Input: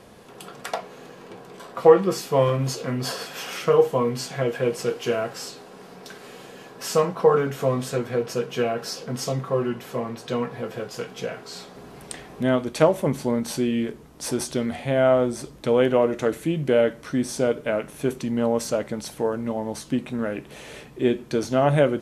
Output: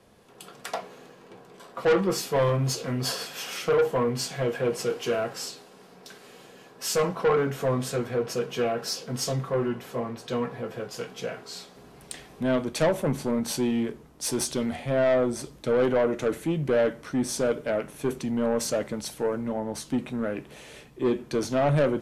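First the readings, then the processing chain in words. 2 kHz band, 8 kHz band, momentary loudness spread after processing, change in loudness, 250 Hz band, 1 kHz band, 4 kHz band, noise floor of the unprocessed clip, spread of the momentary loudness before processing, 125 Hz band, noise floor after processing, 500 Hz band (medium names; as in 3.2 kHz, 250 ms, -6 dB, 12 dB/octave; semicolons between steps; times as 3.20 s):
-2.0 dB, +1.0 dB, 12 LU, -3.5 dB, -3.0 dB, -4.0 dB, 0.0 dB, -45 dBFS, 20 LU, -2.5 dB, -51 dBFS, -4.0 dB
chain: saturation -18.5 dBFS, distortion -9 dB; three bands expanded up and down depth 40%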